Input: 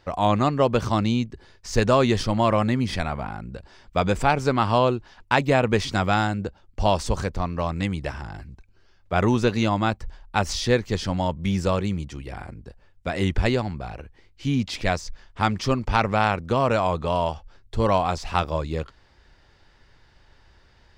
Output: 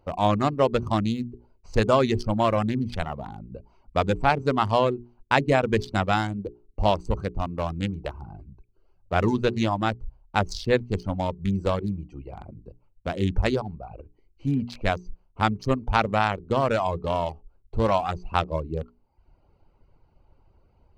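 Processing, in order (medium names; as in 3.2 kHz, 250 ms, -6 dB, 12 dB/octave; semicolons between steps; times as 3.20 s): local Wiener filter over 25 samples; reverb removal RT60 0.7 s; hum notches 60/120/180/240/300/360/420 Hz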